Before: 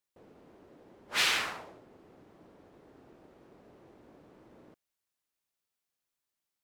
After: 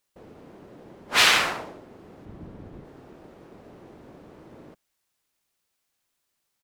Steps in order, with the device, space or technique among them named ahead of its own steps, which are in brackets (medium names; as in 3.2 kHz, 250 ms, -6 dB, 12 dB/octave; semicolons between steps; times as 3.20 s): 2.25–2.85 s: tone controls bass +13 dB, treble -4 dB; octave pedal (harmony voices -12 st -7 dB); trim +9 dB